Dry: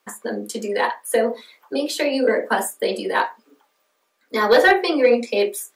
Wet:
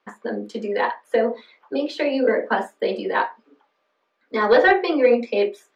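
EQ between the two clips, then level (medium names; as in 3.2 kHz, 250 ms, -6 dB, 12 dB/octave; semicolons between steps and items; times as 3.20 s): distance through air 220 m; 0.0 dB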